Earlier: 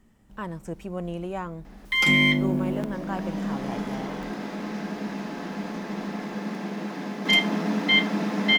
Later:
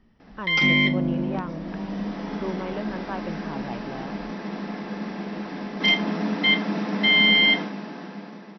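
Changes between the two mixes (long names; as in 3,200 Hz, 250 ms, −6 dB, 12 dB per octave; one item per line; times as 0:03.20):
background: entry −1.45 s
master: add linear-phase brick-wall low-pass 5,900 Hz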